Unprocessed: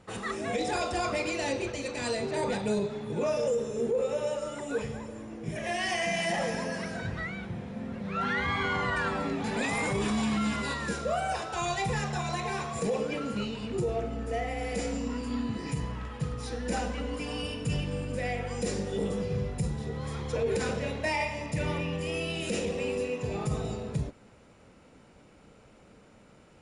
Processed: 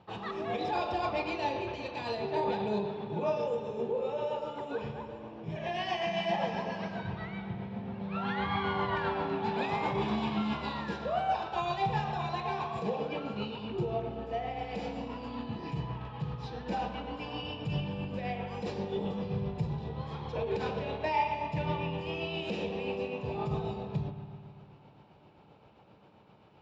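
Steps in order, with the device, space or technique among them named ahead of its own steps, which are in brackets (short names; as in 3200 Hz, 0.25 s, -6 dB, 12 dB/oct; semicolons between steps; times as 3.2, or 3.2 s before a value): combo amplifier with spring reverb and tremolo (spring tank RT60 2.4 s, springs 56 ms, chirp 65 ms, DRR 7 dB; tremolo 7.6 Hz, depth 35%; speaker cabinet 92–4000 Hz, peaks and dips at 250 Hz -7 dB, 500 Hz -5 dB, 870 Hz +7 dB, 1400 Hz -6 dB, 2000 Hz -9 dB)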